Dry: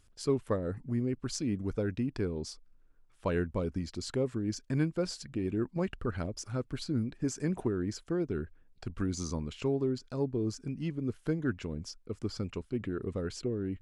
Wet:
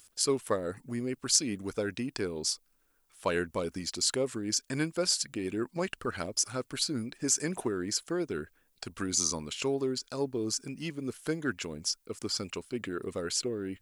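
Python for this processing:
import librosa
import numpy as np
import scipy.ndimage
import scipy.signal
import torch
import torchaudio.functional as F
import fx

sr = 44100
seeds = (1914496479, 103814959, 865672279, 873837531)

y = fx.riaa(x, sr, side='recording')
y = y * 10.0 ** (4.5 / 20.0)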